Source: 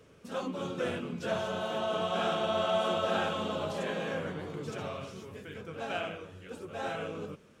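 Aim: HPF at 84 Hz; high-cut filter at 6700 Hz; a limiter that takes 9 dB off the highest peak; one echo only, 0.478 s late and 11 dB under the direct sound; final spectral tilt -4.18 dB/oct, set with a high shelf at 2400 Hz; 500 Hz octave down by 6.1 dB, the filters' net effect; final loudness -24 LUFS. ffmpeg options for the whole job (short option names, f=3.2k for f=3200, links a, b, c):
-af "highpass=84,lowpass=6.7k,equalizer=f=500:t=o:g=-9,highshelf=f=2.4k:g=6,alimiter=level_in=5dB:limit=-24dB:level=0:latency=1,volume=-5dB,aecho=1:1:478:0.282,volume=14.5dB"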